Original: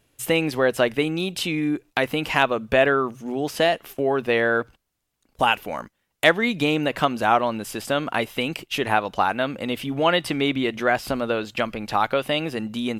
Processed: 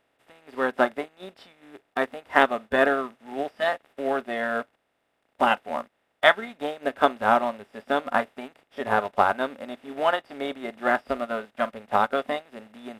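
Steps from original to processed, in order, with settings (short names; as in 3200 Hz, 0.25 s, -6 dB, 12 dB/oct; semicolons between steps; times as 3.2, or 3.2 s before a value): per-bin compression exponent 0.2; spectral noise reduction 15 dB; upward expander 2.5:1, over -33 dBFS; gain -2.5 dB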